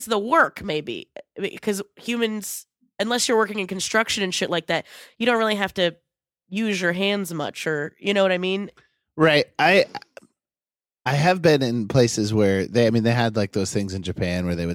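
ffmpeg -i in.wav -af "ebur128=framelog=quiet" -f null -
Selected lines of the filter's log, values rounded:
Integrated loudness:
  I:         -21.9 LUFS
  Threshold: -32.3 LUFS
Loudness range:
  LRA:         3.9 LU
  Threshold: -42.4 LUFS
  LRA low:   -24.5 LUFS
  LRA high:  -20.5 LUFS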